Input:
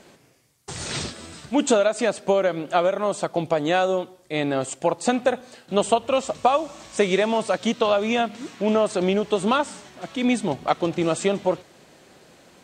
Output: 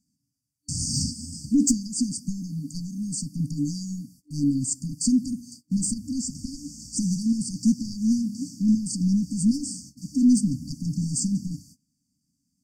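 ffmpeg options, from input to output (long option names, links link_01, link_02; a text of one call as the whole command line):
ffmpeg -i in.wav -af "agate=range=-25dB:threshold=-44dB:ratio=16:detection=peak,asoftclip=type=tanh:threshold=-16.5dB,afftfilt=real='re*(1-between(b*sr/4096,300,4500))':imag='im*(1-between(b*sr/4096,300,4500))':win_size=4096:overlap=0.75,volume=6.5dB" out.wav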